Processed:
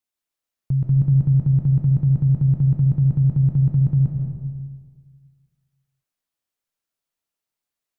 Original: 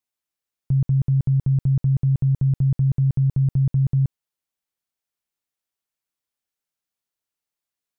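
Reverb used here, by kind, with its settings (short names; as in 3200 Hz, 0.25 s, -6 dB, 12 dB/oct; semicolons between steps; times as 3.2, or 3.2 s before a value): digital reverb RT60 1.6 s, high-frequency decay 0.35×, pre-delay 0.1 s, DRR 0.5 dB; gain -1 dB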